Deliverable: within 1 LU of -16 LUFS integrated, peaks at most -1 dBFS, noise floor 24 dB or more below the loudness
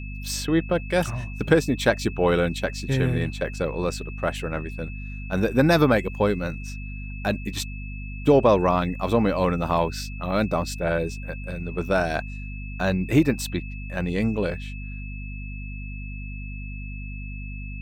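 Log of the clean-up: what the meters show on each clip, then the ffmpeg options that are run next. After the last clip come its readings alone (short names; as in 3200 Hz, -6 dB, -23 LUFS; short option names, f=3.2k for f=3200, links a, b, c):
hum 50 Hz; harmonics up to 250 Hz; hum level -31 dBFS; steady tone 2600 Hz; tone level -41 dBFS; loudness -24.5 LUFS; peak -5.0 dBFS; loudness target -16.0 LUFS
-> -af "bandreject=f=50:t=h:w=6,bandreject=f=100:t=h:w=6,bandreject=f=150:t=h:w=6,bandreject=f=200:t=h:w=6,bandreject=f=250:t=h:w=6"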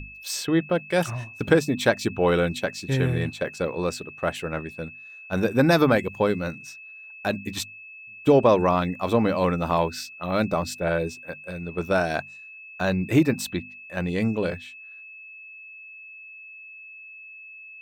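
hum none; steady tone 2600 Hz; tone level -41 dBFS
-> -af "bandreject=f=2.6k:w=30"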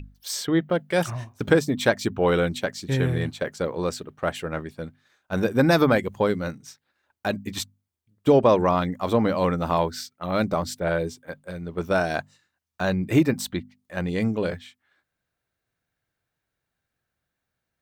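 steady tone none; loudness -24.5 LUFS; peak -4.5 dBFS; loudness target -16.0 LUFS
-> -af "volume=8.5dB,alimiter=limit=-1dB:level=0:latency=1"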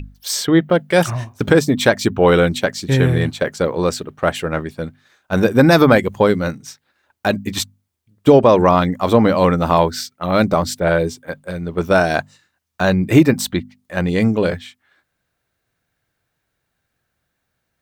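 loudness -16.5 LUFS; peak -1.0 dBFS; noise floor -74 dBFS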